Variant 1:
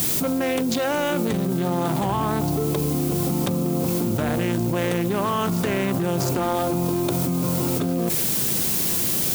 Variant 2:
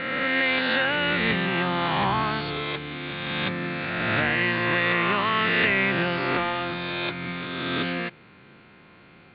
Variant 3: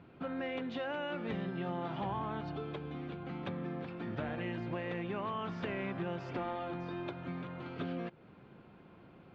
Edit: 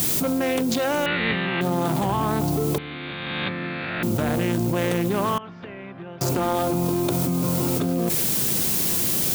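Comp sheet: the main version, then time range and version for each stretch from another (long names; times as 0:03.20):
1
0:01.06–0:01.61: punch in from 2
0:02.78–0:04.03: punch in from 2
0:05.38–0:06.21: punch in from 3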